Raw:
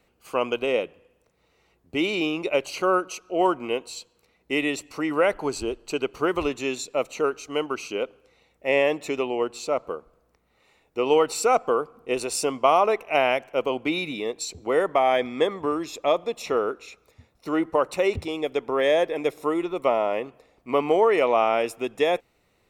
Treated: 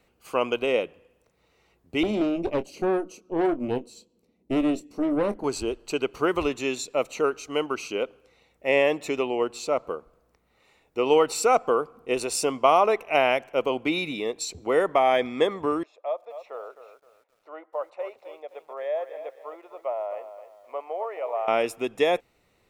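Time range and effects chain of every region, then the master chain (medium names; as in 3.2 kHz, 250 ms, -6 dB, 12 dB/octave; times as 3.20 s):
2.03–5.44 s: FFT filter 140 Hz 0 dB, 210 Hz +14 dB, 1.4 kHz -13 dB, 5.7 kHz -6 dB + valve stage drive 19 dB, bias 0.8 + doubling 24 ms -12 dB
15.83–21.48 s: ladder band-pass 700 Hz, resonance 55% + tilt EQ +3.5 dB/octave + bit-crushed delay 260 ms, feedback 35%, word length 10-bit, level -11 dB
whole clip: none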